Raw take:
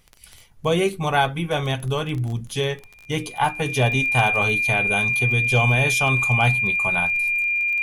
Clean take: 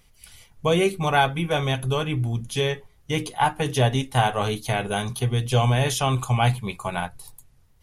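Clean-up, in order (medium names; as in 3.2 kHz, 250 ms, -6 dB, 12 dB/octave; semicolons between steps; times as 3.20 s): clip repair -8.5 dBFS; de-click; band-stop 2.4 kHz, Q 30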